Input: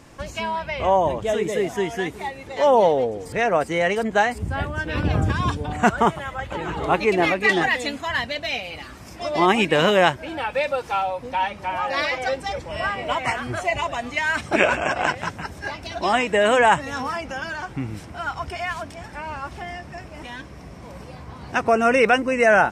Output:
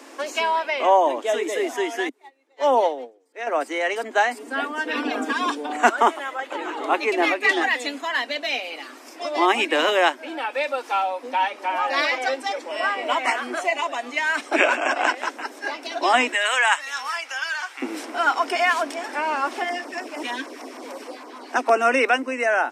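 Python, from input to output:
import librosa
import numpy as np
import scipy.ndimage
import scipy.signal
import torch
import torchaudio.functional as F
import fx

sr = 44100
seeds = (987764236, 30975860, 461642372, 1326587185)

y = fx.upward_expand(x, sr, threshold_db=-33.0, expansion=2.5, at=(2.09, 3.47))
y = fx.comb(y, sr, ms=4.3, depth=0.65, at=(4.37, 5.46))
y = fx.highpass(y, sr, hz=1500.0, slope=12, at=(16.33, 17.82))
y = fx.filter_lfo_notch(y, sr, shape='saw_down', hz=6.5, low_hz=280.0, high_hz=4300.0, q=0.96, at=(19.63, 21.7), fade=0.02)
y = scipy.signal.sosfilt(scipy.signal.butter(16, 250.0, 'highpass', fs=sr, output='sos'), y)
y = fx.dynamic_eq(y, sr, hz=460.0, q=2.2, threshold_db=-34.0, ratio=4.0, max_db=-5)
y = fx.rider(y, sr, range_db=10, speed_s=2.0)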